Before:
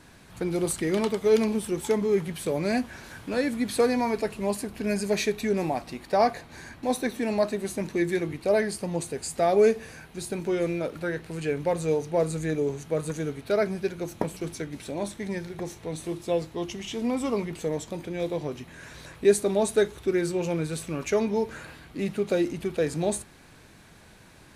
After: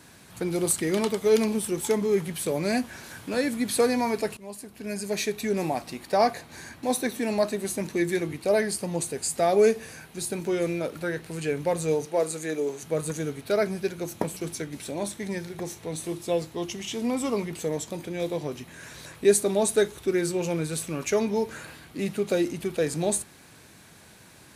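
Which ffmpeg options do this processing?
-filter_complex "[0:a]asettb=1/sr,asplit=3[a][b][c];[a]atrim=end=12.054[d];[b]atrim=start=12.05:end=12.83,asetpts=PTS-STARTPTS,afade=t=in:d=0.004:c=qsin,afade=t=out:st=0.776:d=0.004:c=qsin,highpass=290[e];[c]atrim=start=12.826[f];[d][e]acrossfade=d=0.004:c1=hsin:c2=qsin[g];[g][f]acrossfade=d=0.004:c1=qsin:c2=hsin,asplit=2[h][i];[h]atrim=end=4.37,asetpts=PTS-STARTPTS,afade=t=out:st=4.366:d=0.004:c=hsin:silence=0.141254[j];[i]atrim=start=4.37,asetpts=PTS-STARTPTS,afade=t=in:d=1.31:silence=0.141254[k];[j][k]concat=n=2:v=0:a=1,highpass=77,highshelf=f=5.7k:g=8.5"

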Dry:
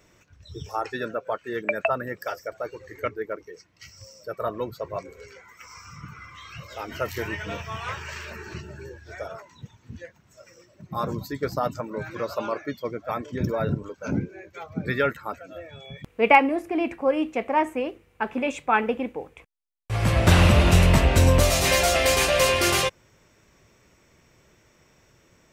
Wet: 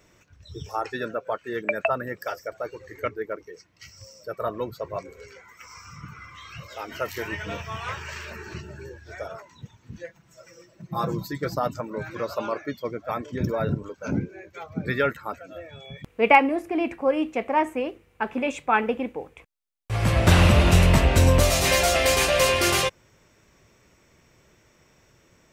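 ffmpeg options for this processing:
-filter_complex "[0:a]asettb=1/sr,asplit=3[a][b][c];[a]atrim=end=6.684[d];[b]atrim=start=6.68:end=7.32,asetpts=PTS-STARTPTS,afade=t=in:d=0.004:c=qsin,afade=t=out:st=0.636:d=0.004:c=qsin,lowshelf=f=190:g=-8.5[e];[c]atrim=start=7.316[f];[d][e]acrossfade=d=0.004:c1=hsin:c2=qsin[g];[g][f]acrossfade=d=0.004:c1=qsin:c2=hsin,asettb=1/sr,asplit=3[h][i][j];[h]atrim=end=9.924[k];[i]atrim=start=9.92:end=11.55,asetpts=PTS-STARTPTS,afade=t=in:d=0.004:c=qsin,afade=t=out:st=1.626:d=0.004:c=qsin,aecho=1:1:6:0.65,atrim=end_sample=71883[l];[j]atrim=start=11.546[m];[k][l]acrossfade=d=0.004:c1=hsin:c2=qsin[n];[n][m]acrossfade=d=0.004:c1=qsin:c2=hsin"

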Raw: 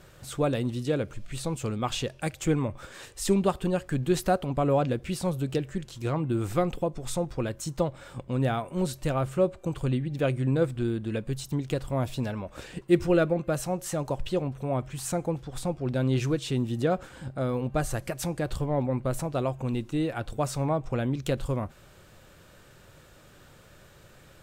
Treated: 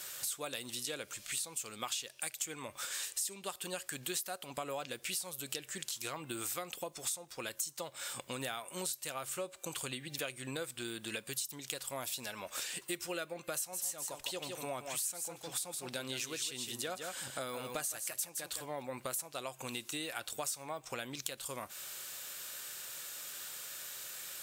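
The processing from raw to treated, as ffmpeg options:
-filter_complex "[0:a]asettb=1/sr,asplit=3[a][b][c];[a]atrim=end=13.564[d];[b]atrim=start=13.56:end=18.66,asetpts=PTS-STARTPTS,afade=t=in:d=0.004:c=qsin,afade=t=out:st=5.096:d=0.004:c=qsin,aecho=1:1:162:0.398,atrim=end_sample=224910[e];[c]atrim=start=18.656[f];[d][e]acrossfade=d=0.004:c1=hsin:c2=qsin[g];[g][f]acrossfade=d=0.004:c1=qsin:c2=hsin,aderivative,acompressor=threshold=-55dB:ratio=6,volume=18dB"

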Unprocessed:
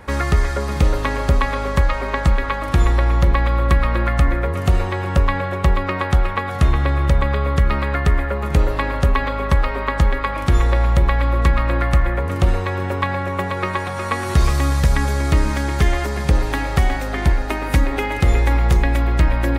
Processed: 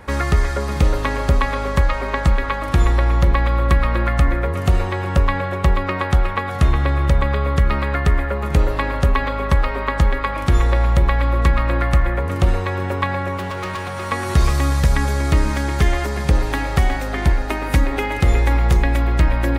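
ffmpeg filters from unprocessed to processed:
-filter_complex "[0:a]asettb=1/sr,asplit=3[a][b][c];[a]atrim=end=13.374[d];[b]atrim=start=13.37:end=14.12,asetpts=PTS-STARTPTS,afade=t=in:d=0.004:c=qsin,afade=t=out:st=0.746:d=0.004:c=qsin,asoftclip=type=hard:threshold=-23dB[e];[c]atrim=start=14.116[f];[d][e]acrossfade=d=0.004:c1=hsin:c2=qsin[g];[g][f]acrossfade=d=0.004:c1=qsin:c2=hsin"

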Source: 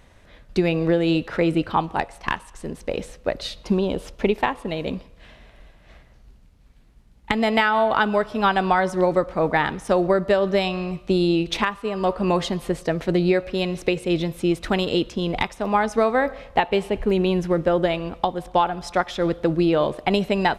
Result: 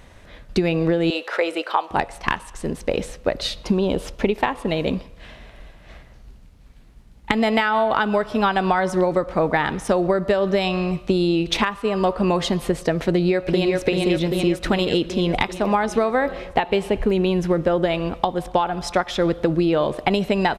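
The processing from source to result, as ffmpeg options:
-filter_complex "[0:a]asettb=1/sr,asplit=3[a][b][c];[a]atrim=end=1.104[d];[b]atrim=start=1.1:end=1.91,asetpts=PTS-STARTPTS,afade=t=in:d=0.004:c=qsin,afade=t=out:st=0.806:d=0.004:c=qsin,highpass=f=460:w=0.5412,highpass=f=460:w=1.3066[e];[c]atrim=start=1.906[f];[d][e]acrossfade=d=0.004:c1=hsin:c2=qsin[g];[g][f]acrossfade=d=0.004:c1=qsin:c2=hsin,asplit=2[h][i];[i]afade=t=in:st=13.09:d=0.01,afade=t=out:st=13.8:d=0.01,aecho=0:1:390|780|1170|1560|1950|2340|2730|3120|3510|3900:0.668344|0.434424|0.282375|0.183544|0.119304|0.0775473|0.0504058|0.0327637|0.0212964|0.0138427[j];[h][j]amix=inputs=2:normalize=0,acompressor=threshold=-21dB:ratio=6,volume=5.5dB"

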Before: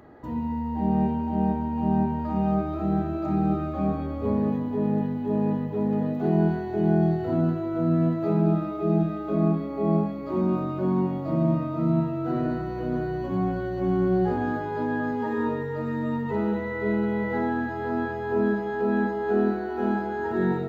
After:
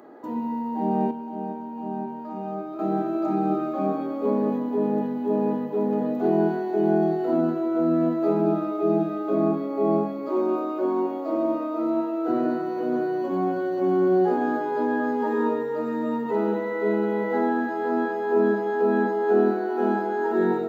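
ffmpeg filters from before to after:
-filter_complex "[0:a]asettb=1/sr,asplit=3[a][b][c];[a]atrim=end=10.284[d];[b]atrim=start=10.28:end=12.28,asetpts=PTS-STARTPTS,afade=t=in:d=0.004:c=qsin,afade=t=out:st=1.996:d=0.004:c=qsin,highpass=f=280:w=0.5412,highpass=f=280:w=1.3066[e];[c]atrim=start=12.276[f];[d][e]acrossfade=d=0.004:c1=hsin:c2=qsin[g];[g][f]acrossfade=d=0.004:c1=qsin:c2=hsin,asplit=3[h][i][j];[h]atrim=end=1.112[k];[i]atrim=start=1.108:end=2.792,asetpts=PTS-STARTPTS,volume=-7.5dB[l];[j]atrim=start=2.788[m];[k][l]acrossfade=d=0.004:c1=hsin:c2=hsin[n];[n][m]acrossfade=d=0.004:c1=hsin:c2=hsin,highpass=f=250:w=0.5412,highpass=f=250:w=1.3066,equalizer=f=2.8k:t=o:w=2:g=-5.5,bandreject=f=1.9k:w=20,volume=5dB"

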